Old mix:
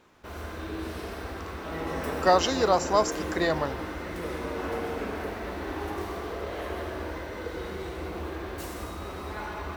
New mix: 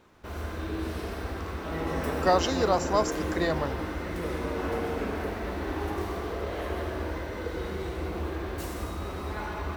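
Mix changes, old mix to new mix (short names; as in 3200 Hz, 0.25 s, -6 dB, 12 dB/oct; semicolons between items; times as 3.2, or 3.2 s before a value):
speech -3.0 dB; master: add low shelf 250 Hz +5 dB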